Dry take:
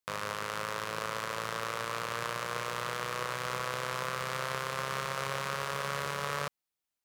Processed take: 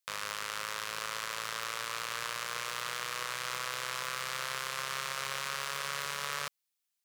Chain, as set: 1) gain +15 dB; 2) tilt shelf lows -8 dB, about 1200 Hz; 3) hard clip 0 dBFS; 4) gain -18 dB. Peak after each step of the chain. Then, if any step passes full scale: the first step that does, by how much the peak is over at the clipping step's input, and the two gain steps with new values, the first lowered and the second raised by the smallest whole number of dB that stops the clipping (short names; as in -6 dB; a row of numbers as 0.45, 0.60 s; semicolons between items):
-1.0, +4.5, 0.0, -18.0 dBFS; step 2, 4.5 dB; step 1 +10 dB, step 4 -13 dB